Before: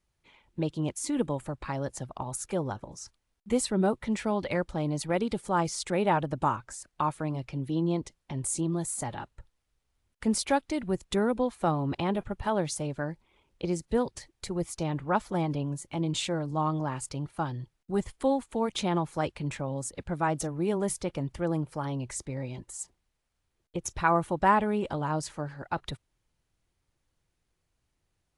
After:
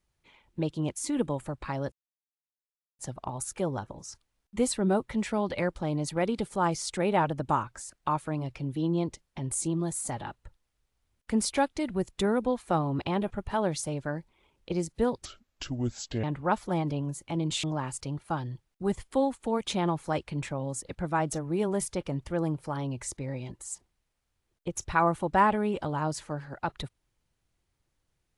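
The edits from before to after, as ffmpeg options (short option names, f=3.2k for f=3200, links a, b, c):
-filter_complex "[0:a]asplit=5[a][b][c][d][e];[a]atrim=end=1.92,asetpts=PTS-STARTPTS,afade=t=out:st=1.916:d=0.004:c=hsin,apad=pad_dur=1.07[f];[b]atrim=start=1.92:end=14.184,asetpts=PTS-STARTPTS,afade=t=in:d=0.004:c=hsin[g];[c]atrim=start=14.18:end=14.87,asetpts=PTS-STARTPTS,asetrate=30870,aresample=44100[h];[d]atrim=start=14.866:end=16.272[i];[e]atrim=start=16.718[j];[f][g]concat=n=2:v=0:a=1[k];[k][h]acrossfade=d=0.004:c1=hsin:c2=hsin[l];[l][i]acrossfade=d=0.004:c1=hsin:c2=hsin[m];[m][j]acrossfade=d=0.004:c1=hsin:c2=hsin"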